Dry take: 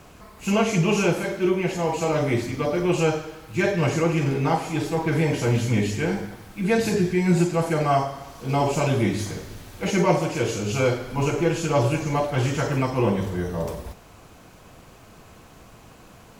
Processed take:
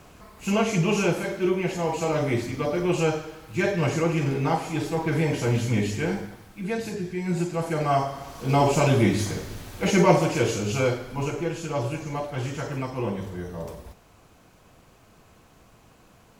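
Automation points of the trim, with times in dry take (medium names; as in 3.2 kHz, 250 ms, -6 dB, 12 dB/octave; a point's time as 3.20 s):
6.12 s -2 dB
6.98 s -10 dB
8.40 s +2 dB
10.32 s +2 dB
11.52 s -7 dB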